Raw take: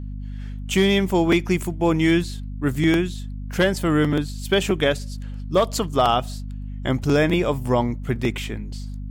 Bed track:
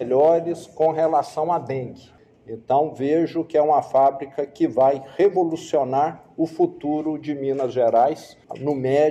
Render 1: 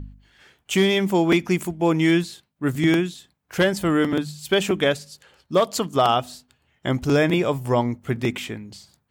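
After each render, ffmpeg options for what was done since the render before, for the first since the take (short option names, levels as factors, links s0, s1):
-af "bandreject=f=50:t=h:w=4,bandreject=f=100:t=h:w=4,bandreject=f=150:t=h:w=4,bandreject=f=200:t=h:w=4,bandreject=f=250:t=h:w=4"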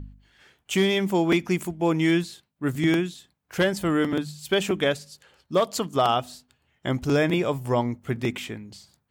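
-af "volume=0.708"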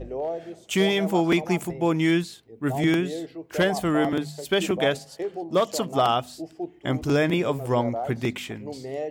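-filter_complex "[1:a]volume=0.211[s0];[0:a][s0]amix=inputs=2:normalize=0"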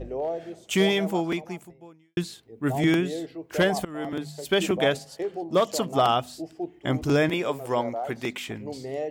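-filter_complex "[0:a]asettb=1/sr,asplit=3[s0][s1][s2];[s0]atrim=end=7.294[s3];[s1]atrim=start=7.29:end=8.48,asetpts=PTS-STARTPTS,afade=t=in:d=0.004:c=qsin,afade=t=out:st=1.186:d=0.004:c=qsin,equalizer=f=62:w=0.34:g=-14[s4];[s2]atrim=start=8.476[s5];[s3][s4]acrossfade=d=0.004:c1=hsin:c2=qsin[s6];[s6][s5]acrossfade=d=0.004:c1=qsin:c2=hsin,asplit=3[s7][s8][s9];[s7]atrim=end=2.17,asetpts=PTS-STARTPTS,afade=t=out:st=0.91:d=1.26:c=qua[s10];[s8]atrim=start=2.17:end=3.85,asetpts=PTS-STARTPTS,afade=t=in:d=0.004:c=hsin,afade=t=out:st=1.676:d=0.004:c=hsin:silence=0.0749894[s11];[s9]atrim=start=3.85,asetpts=PTS-STARTPTS,afade=t=in:d=0.63:silence=0.0749894[s12];[s10][s11][s12]concat=n=3:v=0:a=1"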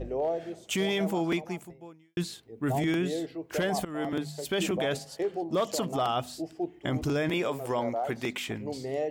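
-af "alimiter=limit=0.1:level=0:latency=1:release=18,areverse,acompressor=mode=upward:threshold=0.00794:ratio=2.5,areverse"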